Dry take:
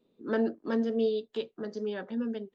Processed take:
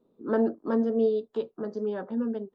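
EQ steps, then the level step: resonant high shelf 1600 Hz -10 dB, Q 1.5; +3.0 dB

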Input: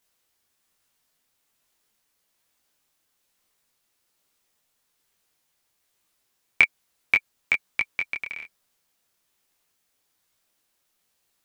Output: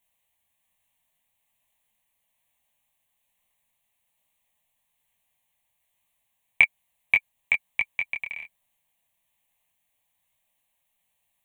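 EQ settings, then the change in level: fixed phaser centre 1400 Hz, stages 6; 0.0 dB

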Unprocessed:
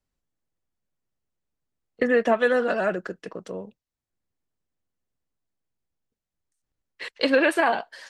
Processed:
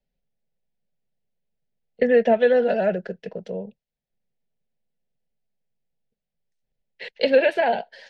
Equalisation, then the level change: air absorption 270 m; high shelf 7700 Hz +9.5 dB; fixed phaser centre 310 Hz, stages 6; +5.5 dB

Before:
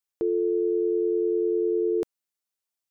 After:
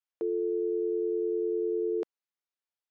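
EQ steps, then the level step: HPF 340 Hz; air absorption 150 m; -3.0 dB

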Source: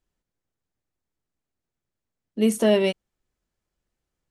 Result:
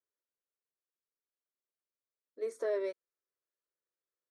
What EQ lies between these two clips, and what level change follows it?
BPF 540–3300 Hz; bell 1500 Hz -7 dB 2.4 oct; fixed phaser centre 780 Hz, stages 6; -4.0 dB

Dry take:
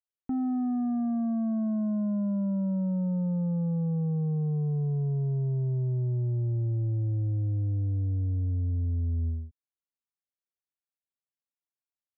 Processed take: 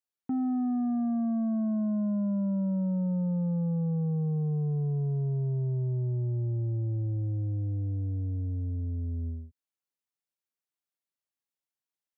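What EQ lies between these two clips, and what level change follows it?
HPF 99 Hz; 0.0 dB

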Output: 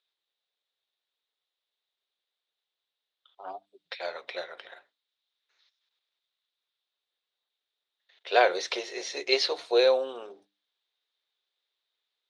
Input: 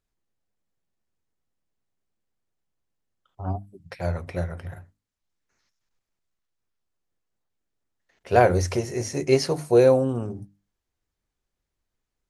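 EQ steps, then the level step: Chebyshev high-pass 420 Hz, order 3; synth low-pass 3700 Hz, resonance Q 7; low shelf 500 Hz -10 dB; 0.0 dB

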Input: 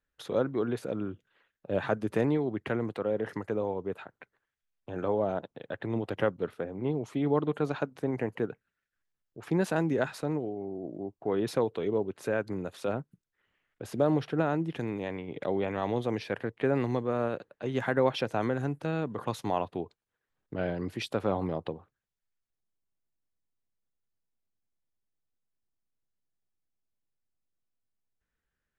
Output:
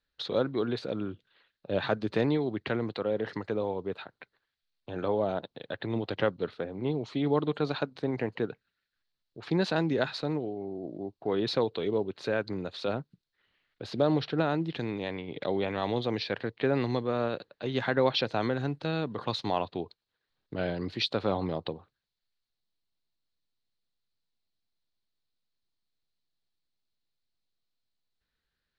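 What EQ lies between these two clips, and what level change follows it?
synth low-pass 4200 Hz, resonance Q 5.2; 0.0 dB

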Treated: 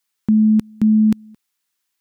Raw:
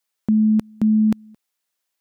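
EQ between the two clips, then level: dynamic EQ 1100 Hz, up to -4 dB, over -43 dBFS, Q 0.77; bell 610 Hz -12 dB 0.57 oct; +3.5 dB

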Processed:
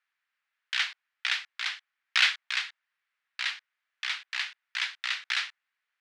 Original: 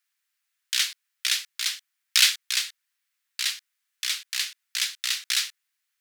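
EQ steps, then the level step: BPF 530–2100 Hz; dynamic EQ 780 Hz, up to +7 dB, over -60 dBFS, Q 2.5; +4.5 dB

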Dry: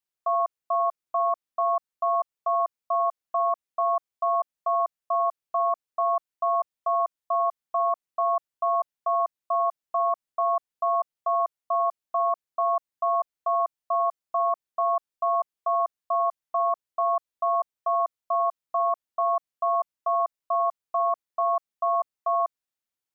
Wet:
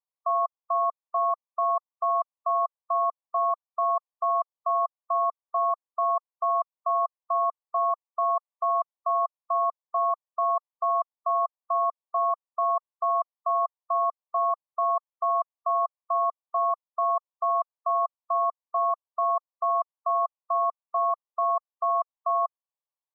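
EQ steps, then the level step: brick-wall FIR band-pass 460–1200 Hz; tilt +4.5 dB/oct; 0.0 dB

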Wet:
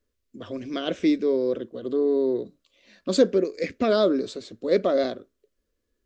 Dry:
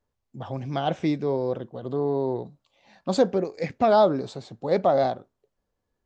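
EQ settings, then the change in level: fixed phaser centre 340 Hz, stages 4; +4.5 dB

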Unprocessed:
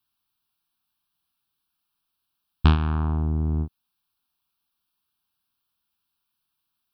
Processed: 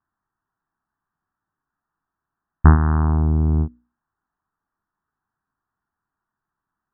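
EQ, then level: brick-wall FIR low-pass 2000 Hz; notches 60/120/180/240/300/360/420/480 Hz; +6.5 dB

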